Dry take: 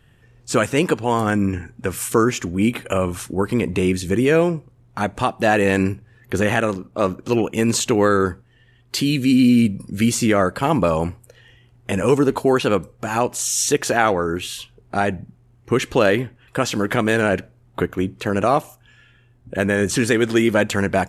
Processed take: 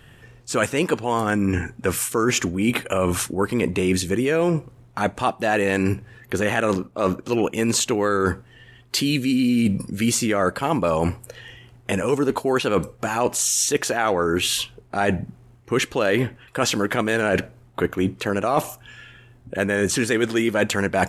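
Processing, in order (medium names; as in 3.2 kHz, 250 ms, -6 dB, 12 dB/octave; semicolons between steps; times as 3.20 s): bass shelf 240 Hz -5 dB; reverse; compression 6:1, threshold -27 dBFS, peak gain reduction 14.5 dB; reverse; trim +9 dB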